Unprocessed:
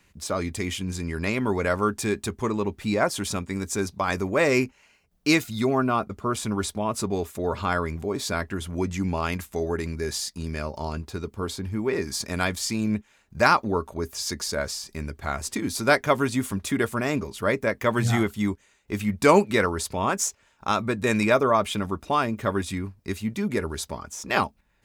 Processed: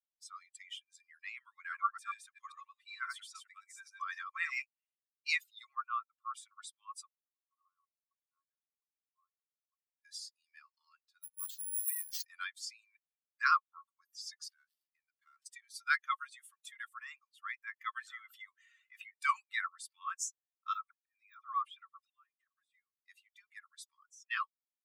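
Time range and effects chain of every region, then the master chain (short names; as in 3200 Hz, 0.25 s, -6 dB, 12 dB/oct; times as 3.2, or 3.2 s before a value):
1.57–4.62 reverse delay 0.136 s, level -1.5 dB + de-esser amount 55%
7.07–10.05 compressor 10:1, threshold -33 dBFS + double band-pass 570 Hz, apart 1.8 oct
11.23–12.24 notch comb 450 Hz + careless resampling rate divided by 4×, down none, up zero stuff
14.48–15.46 switching dead time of 0.09 ms + low shelf 480 Hz +3 dB + compressor 10:1, threshold -30 dBFS
18.01–19.19 HPF 560 Hz + high shelf 2200 Hz -10 dB + fast leveller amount 70%
20.73–23 de-esser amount 80% + auto swell 0.644 s + dispersion lows, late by 50 ms, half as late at 1100 Hz
whole clip: per-bin expansion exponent 2; Chebyshev high-pass 1100 Hz, order 8; high shelf 2800 Hz -10 dB; gain -1 dB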